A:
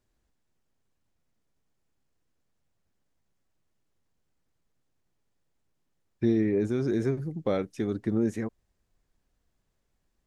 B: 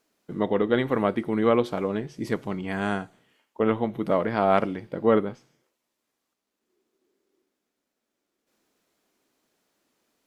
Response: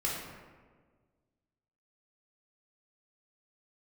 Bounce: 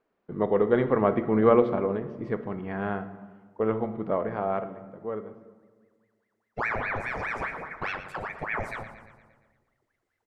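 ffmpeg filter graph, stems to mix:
-filter_complex "[0:a]aeval=exprs='val(0)*sin(2*PI*1200*n/s+1200*0.75/4.9*sin(2*PI*4.9*n/s))':c=same,adelay=350,volume=-4dB,asplit=3[a][b][c];[b]volume=-15dB[d];[c]volume=-11dB[e];[1:a]lowpass=1.6k,dynaudnorm=f=220:g=13:m=11.5dB,volume=-1.5dB,afade=t=out:st=1.26:d=0.75:silence=0.375837,afade=t=out:st=4.18:d=0.58:silence=0.316228,asplit=2[f][g];[g]volume=-14dB[h];[2:a]atrim=start_sample=2205[i];[d][h]amix=inputs=2:normalize=0[j];[j][i]afir=irnorm=-1:irlink=0[k];[e]aecho=0:1:116|232|348|464|580|696|812|928:1|0.56|0.314|0.176|0.0983|0.0551|0.0308|0.0173[l];[a][f][k][l]amix=inputs=4:normalize=0,equalizer=f=310:t=o:w=0.22:g=-5"

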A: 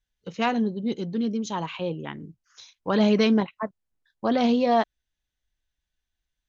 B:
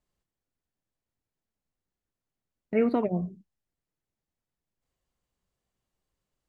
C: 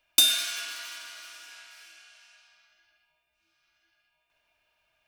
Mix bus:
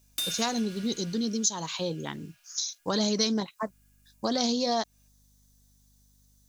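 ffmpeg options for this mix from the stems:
-filter_complex "[0:a]aexciter=amount=12.6:drive=6.7:freq=4.2k,volume=-0.5dB[a];[1:a]aeval=exprs='val(0)+0.000562*(sin(2*PI*50*n/s)+sin(2*PI*2*50*n/s)/2+sin(2*PI*3*50*n/s)/3+sin(2*PI*4*50*n/s)/4+sin(2*PI*5*50*n/s)/5)':c=same,volume=2.5dB,asplit=3[b][c][d];[b]atrim=end=1.24,asetpts=PTS-STARTPTS,afade=t=out:st=1.236:d=0.004:c=hsin[e];[c]atrim=start=1.24:end=3.66,asetpts=PTS-STARTPTS,volume=0[f];[d]atrim=start=3.66,asetpts=PTS-STARTPTS,afade=t=in:d=0.004:c=hsin[g];[e][f][g]concat=n=3:v=0:a=1[h];[2:a]asoftclip=type=tanh:threshold=-15dB,volume=-8dB[i];[a][h][i]amix=inputs=3:normalize=0,acompressor=threshold=-27dB:ratio=2.5"

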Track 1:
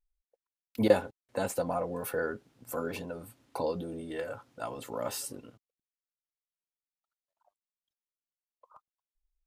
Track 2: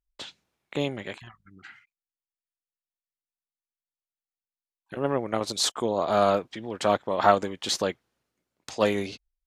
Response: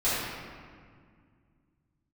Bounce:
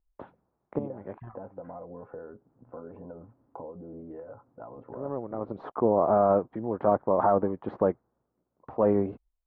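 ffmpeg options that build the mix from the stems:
-filter_complex "[0:a]acompressor=threshold=-39dB:ratio=5,volume=0dB,asplit=2[a][b];[1:a]alimiter=limit=-14.5dB:level=0:latency=1:release=22,acontrast=84,volume=-3dB[c];[b]apad=whole_len=417604[d];[c][d]sidechaincompress=threshold=-48dB:ratio=8:attack=11:release=267[e];[a][e]amix=inputs=2:normalize=0,lowpass=f=1.1k:w=0.5412,lowpass=f=1.1k:w=1.3066"

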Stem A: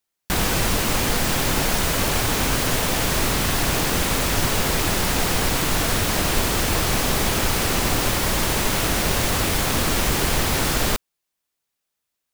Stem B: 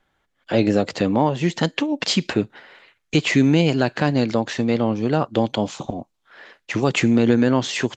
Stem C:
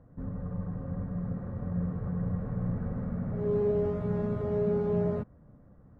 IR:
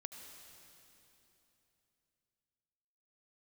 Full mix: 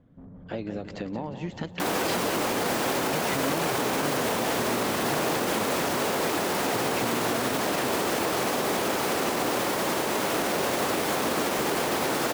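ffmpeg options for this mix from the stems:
-filter_complex "[0:a]highpass=330,tiltshelf=f=1.3k:g=6,adelay=1500,volume=-1.5dB[a];[1:a]highshelf=f=4.3k:g=-9,acompressor=threshold=-21dB:ratio=6,volume=-8.5dB,asplit=2[b][c];[c]volume=-10.5dB[d];[2:a]equalizer=f=250:w=1:g=8.5,acompressor=threshold=-34dB:ratio=1.5,asoftclip=type=tanh:threshold=-35dB,volume=-7dB[e];[d]aecho=0:1:178|356|534|712|890|1068|1246:1|0.47|0.221|0.104|0.0488|0.0229|0.0108[f];[a][b][e][f]amix=inputs=4:normalize=0,alimiter=limit=-17dB:level=0:latency=1:release=33"

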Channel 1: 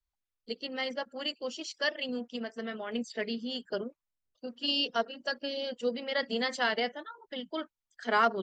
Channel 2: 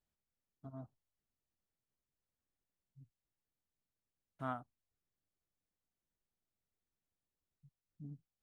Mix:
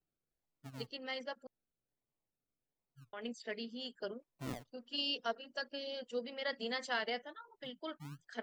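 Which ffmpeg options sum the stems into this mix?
-filter_complex "[0:a]equalizer=f=130:w=0.54:g=-4,adelay=300,volume=-7dB,asplit=3[a][b][c];[a]atrim=end=1.47,asetpts=PTS-STARTPTS,afade=t=out:st=1.466:d=0.004:c=hsin[d];[b]atrim=start=1.47:end=3.13,asetpts=PTS-STARTPTS,volume=0[e];[c]atrim=start=3.13,asetpts=PTS-STARTPTS,afade=t=in:d=0.004:c=hsin[f];[d][e][f]concat=n=3:v=0:a=1[g];[1:a]aecho=1:1:7.1:0.98,acrusher=samples=37:mix=1:aa=0.000001:lfo=1:lforange=22.2:lforate=1.3,volume=-5dB[h];[g][h]amix=inputs=2:normalize=0"

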